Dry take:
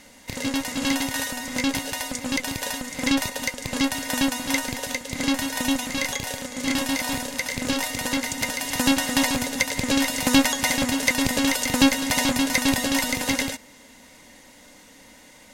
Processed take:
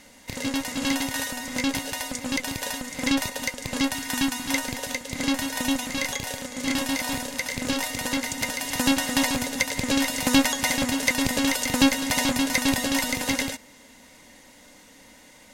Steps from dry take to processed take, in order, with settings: 3.94–4.51 bell 560 Hz -13.5 dB 0.36 oct; gain -1.5 dB

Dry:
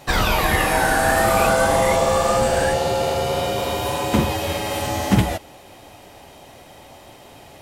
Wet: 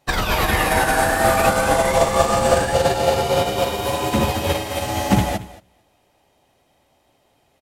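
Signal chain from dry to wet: limiter -12.5 dBFS, peak gain reduction 8 dB; feedback echo 0.226 s, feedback 23%, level -6.5 dB; upward expander 2.5:1, over -35 dBFS; gain +7 dB

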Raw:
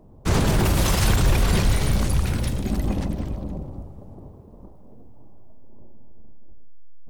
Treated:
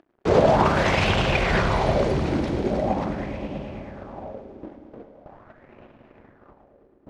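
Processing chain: gate with hold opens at -34 dBFS; HPF 150 Hz 6 dB/oct; bell 630 Hz +7.5 dB 0.95 oct; in parallel at +2 dB: upward compressor, threshold -27 dBFS; on the sum: crossover distortion -39.5 dBFS; air absorption 150 m; multi-head echo 0.108 s, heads all three, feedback 64%, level -14 dB; on a send at -13 dB: reverb RT60 0.60 s, pre-delay 65 ms; on the sum: LFO bell 0.42 Hz 310–2800 Hz +11 dB; gain -7.5 dB

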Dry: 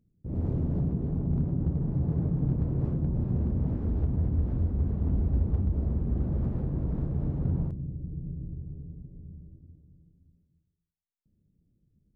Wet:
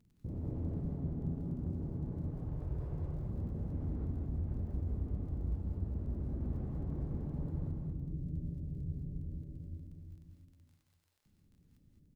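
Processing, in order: 2.22–3.23 bell 220 Hz -14 dB 1.3 oct; compressor 6:1, threshold -39 dBFS, peak gain reduction 16.5 dB; crackle 19/s -58 dBFS; echo 0.191 s -6.5 dB; non-linear reverb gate 0.24 s rising, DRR -0.5 dB

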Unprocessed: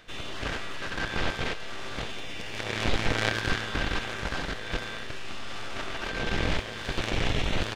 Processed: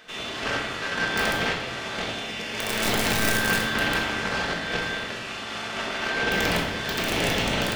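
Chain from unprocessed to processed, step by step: HPF 280 Hz 6 dB/oct; notch 3800 Hz, Q 24; wrapped overs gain 18.5 dB; reverb RT60 1.0 s, pre-delay 5 ms, DRR -1 dB; gain +3.5 dB

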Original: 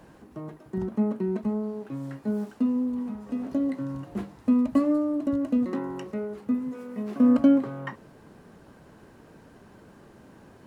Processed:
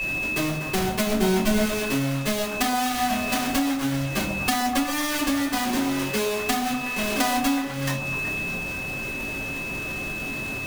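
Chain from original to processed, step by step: half-waves squared off; 6.69–7.2 level quantiser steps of 11 dB; high shelf 2100 Hz +10.5 dB; notches 60/120/180/240/300 Hz; reverb RT60 0.30 s, pre-delay 3 ms, DRR -6.5 dB; whine 2600 Hz -25 dBFS; compressor 16:1, threshold -21 dBFS, peak gain reduction 26.5 dB; 1.07–1.66 low shelf 250 Hz +9.5 dB; delay with a stepping band-pass 0.124 s, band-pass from 630 Hz, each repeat 0.7 oct, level -3 dB

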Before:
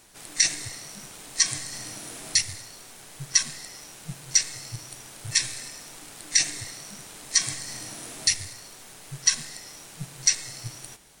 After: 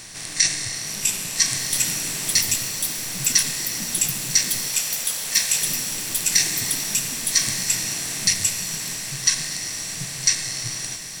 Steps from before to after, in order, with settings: per-bin compression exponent 0.6; echoes that change speed 0.752 s, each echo +5 st, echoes 3; 4.68–5.62 brick-wall FIR high-pass 410 Hz; on a send: diffused feedback echo 1.45 s, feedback 56%, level -11 dB

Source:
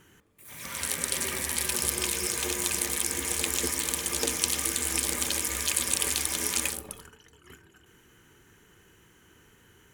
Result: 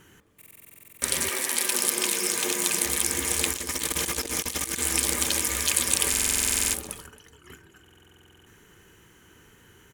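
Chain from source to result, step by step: 1.28–2.84 HPF 290 Hz -> 120 Hz 24 dB/oct; echo 0.272 s -19.5 dB; 3.53–4.79 negative-ratio compressor -33 dBFS, ratio -0.5; stuck buffer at 0.37/6.09/7.82, samples 2048, times 13; gain +3.5 dB

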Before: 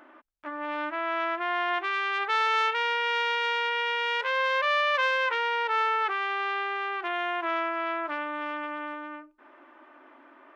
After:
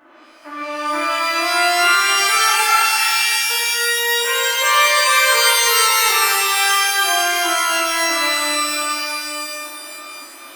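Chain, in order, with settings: 2.48–2.98 sine-wave speech; 2.94–3.5 spectral delete 290–1800 Hz; shimmer reverb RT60 2.4 s, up +12 st, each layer -2 dB, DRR -9.5 dB; gain -1 dB

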